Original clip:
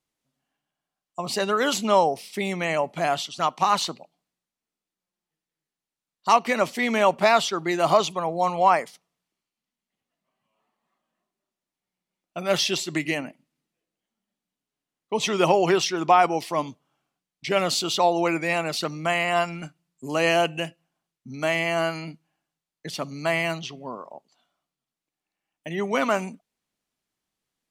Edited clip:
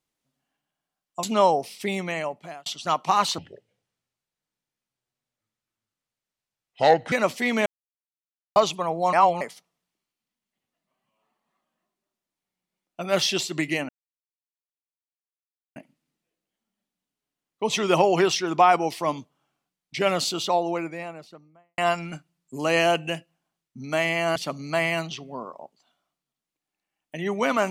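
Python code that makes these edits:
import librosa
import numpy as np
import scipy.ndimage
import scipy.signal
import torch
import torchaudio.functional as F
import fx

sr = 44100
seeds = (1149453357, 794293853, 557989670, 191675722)

y = fx.studio_fade_out(x, sr, start_s=17.49, length_s=1.79)
y = fx.edit(y, sr, fx.cut(start_s=1.23, length_s=0.53),
    fx.fade_out_span(start_s=2.43, length_s=0.76),
    fx.speed_span(start_s=3.91, length_s=2.58, speed=0.69),
    fx.silence(start_s=7.03, length_s=0.9),
    fx.reverse_span(start_s=8.5, length_s=0.28),
    fx.insert_silence(at_s=13.26, length_s=1.87),
    fx.cut(start_s=21.86, length_s=1.02), tone=tone)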